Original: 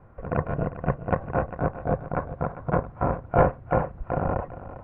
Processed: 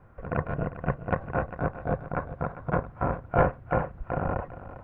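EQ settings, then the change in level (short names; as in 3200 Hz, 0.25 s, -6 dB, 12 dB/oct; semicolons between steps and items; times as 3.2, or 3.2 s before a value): low shelf 470 Hz +3 dB; bell 1500 Hz +3 dB 0.59 oct; high shelf 2100 Hz +9.5 dB; -5.5 dB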